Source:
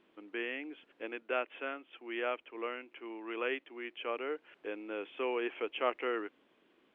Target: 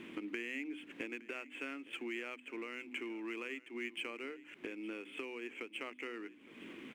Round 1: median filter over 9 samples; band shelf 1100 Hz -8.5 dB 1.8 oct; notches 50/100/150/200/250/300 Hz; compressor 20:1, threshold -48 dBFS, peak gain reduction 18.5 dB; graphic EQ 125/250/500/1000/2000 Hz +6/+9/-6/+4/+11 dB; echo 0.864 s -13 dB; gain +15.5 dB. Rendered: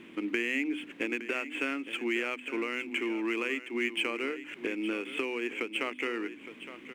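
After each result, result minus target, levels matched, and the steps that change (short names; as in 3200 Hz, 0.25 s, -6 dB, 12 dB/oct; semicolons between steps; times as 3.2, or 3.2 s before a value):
compressor: peak gain reduction -11 dB; echo-to-direct +6 dB
change: compressor 20:1, threshold -59.5 dBFS, peak gain reduction 29.5 dB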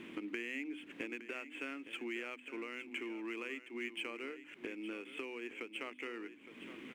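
echo-to-direct +6 dB
change: echo 0.864 s -19 dB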